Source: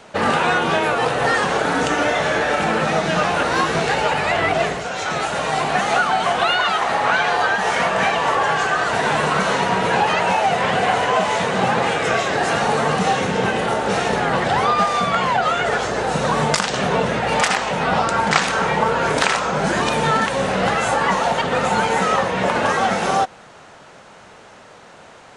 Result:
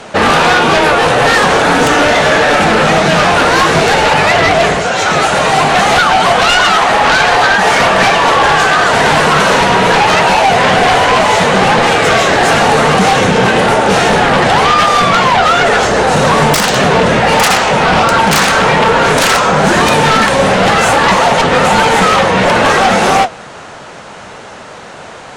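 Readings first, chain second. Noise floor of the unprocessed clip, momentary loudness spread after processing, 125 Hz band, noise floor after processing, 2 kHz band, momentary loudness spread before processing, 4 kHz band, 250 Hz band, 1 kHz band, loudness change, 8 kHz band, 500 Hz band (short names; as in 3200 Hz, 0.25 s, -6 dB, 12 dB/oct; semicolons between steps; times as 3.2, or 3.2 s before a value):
-44 dBFS, 1 LU, +10.0 dB, -30 dBFS, +10.0 dB, 2 LU, +11.5 dB, +10.0 dB, +9.5 dB, +10.0 dB, +11.0 dB, +9.5 dB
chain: sine folder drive 12 dB, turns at -2.5 dBFS; flange 1.6 Hz, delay 6.6 ms, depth 8.9 ms, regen -57%; gain +1.5 dB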